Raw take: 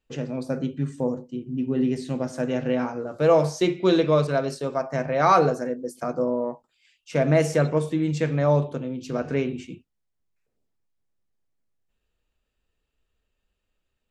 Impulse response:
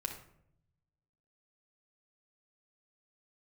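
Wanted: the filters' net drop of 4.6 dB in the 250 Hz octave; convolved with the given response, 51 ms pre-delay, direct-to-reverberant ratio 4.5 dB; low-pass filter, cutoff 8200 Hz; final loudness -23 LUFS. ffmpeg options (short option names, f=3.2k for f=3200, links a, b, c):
-filter_complex "[0:a]lowpass=8.2k,equalizer=f=250:t=o:g=-6.5,asplit=2[a][b];[1:a]atrim=start_sample=2205,adelay=51[c];[b][c]afir=irnorm=-1:irlink=0,volume=-5dB[d];[a][d]amix=inputs=2:normalize=0,volume=1.5dB"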